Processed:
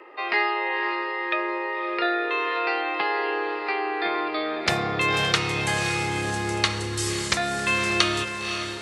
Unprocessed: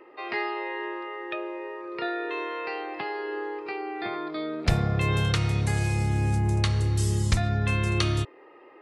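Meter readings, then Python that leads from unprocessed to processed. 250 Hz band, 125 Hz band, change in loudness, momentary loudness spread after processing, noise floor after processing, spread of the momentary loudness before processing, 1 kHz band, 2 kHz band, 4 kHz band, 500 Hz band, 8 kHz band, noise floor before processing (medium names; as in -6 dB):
+1.0 dB, -9.5 dB, +3.5 dB, 5 LU, -31 dBFS, 9 LU, +7.5 dB, +9.0 dB, +9.0 dB, +4.5 dB, +7.0 dB, -51 dBFS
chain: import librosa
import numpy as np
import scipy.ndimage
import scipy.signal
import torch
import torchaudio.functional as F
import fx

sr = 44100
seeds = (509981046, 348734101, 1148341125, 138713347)

p1 = fx.weighting(x, sr, curve='A')
p2 = p1 + fx.echo_diffused(p1, sr, ms=549, feedback_pct=49, wet_db=-7.5, dry=0)
y = p2 * librosa.db_to_amplitude(7.0)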